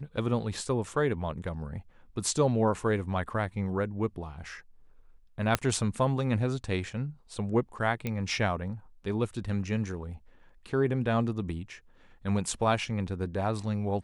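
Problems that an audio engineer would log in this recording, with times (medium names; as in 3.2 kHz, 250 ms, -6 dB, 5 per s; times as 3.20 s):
5.55 s: pop -8 dBFS
8.07 s: pop -18 dBFS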